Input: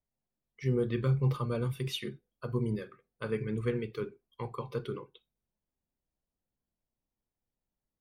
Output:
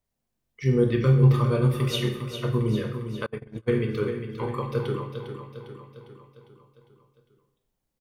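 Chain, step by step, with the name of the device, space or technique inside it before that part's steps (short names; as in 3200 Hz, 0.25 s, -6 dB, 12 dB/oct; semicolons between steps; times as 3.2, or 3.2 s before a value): bathroom (reverb RT60 0.65 s, pre-delay 18 ms, DRR 4.5 dB); feedback echo 0.403 s, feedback 55%, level -9 dB; 3.26–3.73 gate -28 dBFS, range -34 dB; gain +6.5 dB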